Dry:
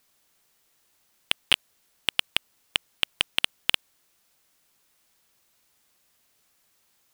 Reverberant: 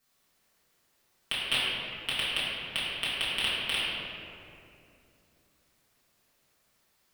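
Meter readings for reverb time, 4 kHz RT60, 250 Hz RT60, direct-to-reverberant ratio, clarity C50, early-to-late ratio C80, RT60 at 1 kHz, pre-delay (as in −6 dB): 2.7 s, 1.4 s, 3.5 s, −12.0 dB, −3.0 dB, −1.5 dB, 2.4 s, 4 ms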